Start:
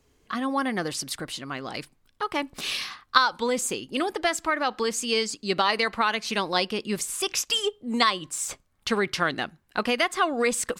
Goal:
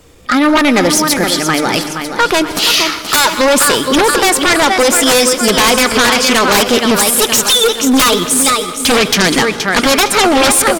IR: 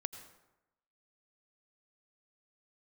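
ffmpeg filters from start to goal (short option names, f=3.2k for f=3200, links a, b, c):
-filter_complex "[0:a]asplit=2[a][b];[b]aecho=0:1:470|940|1410|1880|2350:0.316|0.145|0.0669|0.0308|0.0142[c];[a][c]amix=inputs=2:normalize=0,aeval=exprs='0.708*sin(PI/2*10*val(0)/0.708)':c=same,asplit=2[d][e];[1:a]atrim=start_sample=2205,asetrate=31752,aresample=44100[f];[e][f]afir=irnorm=-1:irlink=0,volume=4.5dB[g];[d][g]amix=inputs=2:normalize=0,asetrate=49501,aresample=44100,atempo=0.890899,bandreject=f=50:t=h:w=6,bandreject=f=100:t=h:w=6,bandreject=f=150:t=h:w=6,volume=-11.5dB"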